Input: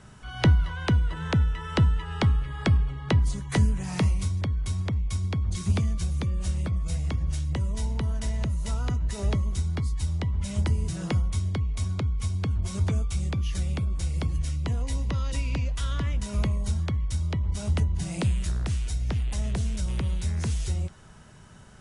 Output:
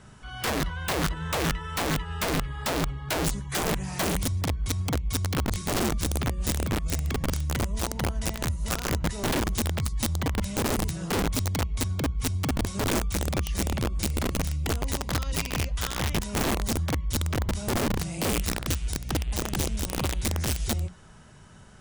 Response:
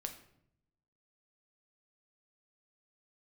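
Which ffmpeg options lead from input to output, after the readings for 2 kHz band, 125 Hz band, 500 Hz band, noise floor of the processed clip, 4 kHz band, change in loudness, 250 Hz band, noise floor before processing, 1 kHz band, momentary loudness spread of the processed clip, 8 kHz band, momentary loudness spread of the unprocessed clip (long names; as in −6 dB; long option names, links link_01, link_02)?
+5.5 dB, −4.5 dB, +6.0 dB, −47 dBFS, +6.5 dB, −0.5 dB, +2.0 dB, −47 dBFS, +6.5 dB, 2 LU, +9.0 dB, 4 LU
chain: -af "aeval=exprs='(mod(11.9*val(0)+1,2)-1)/11.9':channel_layout=same,bandreject=frequency=60:width_type=h:width=6,bandreject=frequency=120:width_type=h:width=6,bandreject=frequency=180:width_type=h:width=6"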